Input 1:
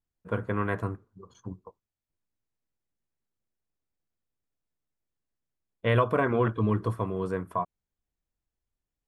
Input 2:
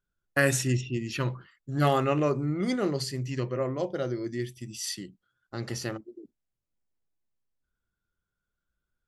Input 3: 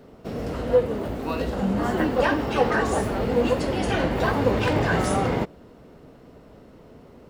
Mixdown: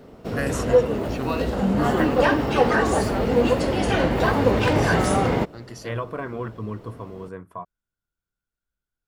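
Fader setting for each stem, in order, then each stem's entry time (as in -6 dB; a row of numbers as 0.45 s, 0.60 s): -6.0 dB, -5.5 dB, +2.5 dB; 0.00 s, 0.00 s, 0.00 s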